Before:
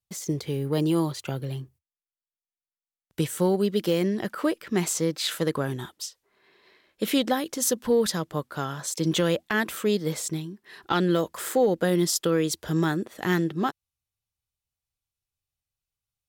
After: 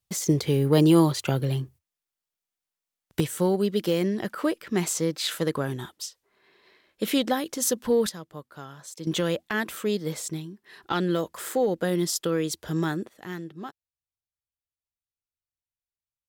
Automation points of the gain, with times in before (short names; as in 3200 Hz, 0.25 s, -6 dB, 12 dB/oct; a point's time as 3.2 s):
+6 dB
from 3.2 s -0.5 dB
from 8.09 s -11 dB
from 9.07 s -2.5 dB
from 13.09 s -12 dB